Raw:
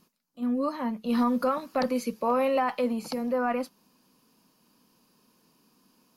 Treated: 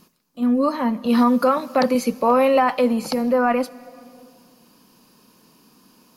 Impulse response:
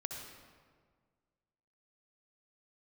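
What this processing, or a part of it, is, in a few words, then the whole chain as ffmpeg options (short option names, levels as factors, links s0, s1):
ducked reverb: -filter_complex "[0:a]asplit=3[s0][s1][s2];[1:a]atrim=start_sample=2205[s3];[s1][s3]afir=irnorm=-1:irlink=0[s4];[s2]apad=whole_len=271838[s5];[s4][s5]sidechaincompress=threshold=0.02:ratio=8:attack=41:release=702,volume=0.422[s6];[s0][s6]amix=inputs=2:normalize=0,asettb=1/sr,asplit=3[s7][s8][s9];[s7]atrim=end=1.054[s10];[s8]atrim=start=1.05:end=1.95,asetpts=PTS-STARTPTS,afade=t=in:d=0.004:c=qsin,afade=t=out:st=0.896:d=0.004:c=qsin,highpass=130[s11];[s9]atrim=start=1.946[s12];[s10][s11]acrossfade=d=0.004:c1=hsin:c2=qsin[s13];[s13][s12]acrossfade=d=0.004:c1=qsin:c2=hsin,volume=2.51"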